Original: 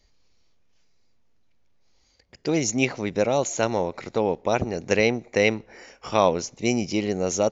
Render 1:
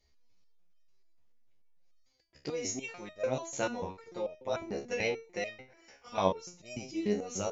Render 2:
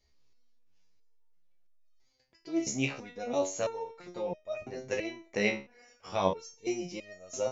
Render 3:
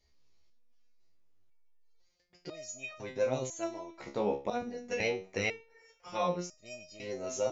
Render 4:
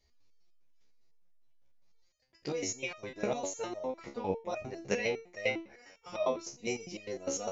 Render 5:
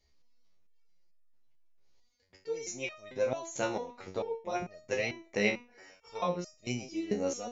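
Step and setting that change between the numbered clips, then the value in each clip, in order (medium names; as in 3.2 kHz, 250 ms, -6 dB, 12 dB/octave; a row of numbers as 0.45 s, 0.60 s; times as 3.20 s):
resonator arpeggio, rate: 6.8 Hz, 3 Hz, 2 Hz, 9.9 Hz, 4.5 Hz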